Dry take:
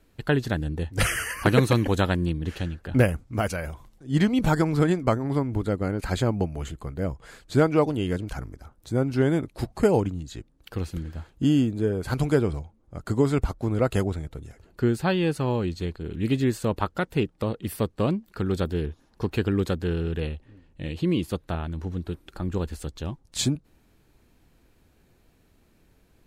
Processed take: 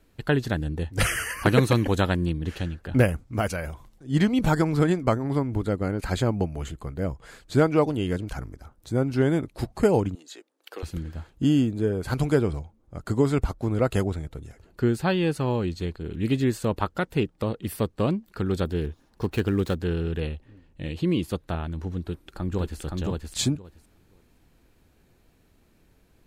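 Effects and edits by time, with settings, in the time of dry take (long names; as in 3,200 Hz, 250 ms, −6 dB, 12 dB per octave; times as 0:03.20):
0:10.15–0:10.83: high-pass filter 380 Hz 24 dB per octave
0:18.81–0:19.79: gap after every zero crossing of 0.056 ms
0:22.00–0:22.81: delay throw 520 ms, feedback 15%, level −2 dB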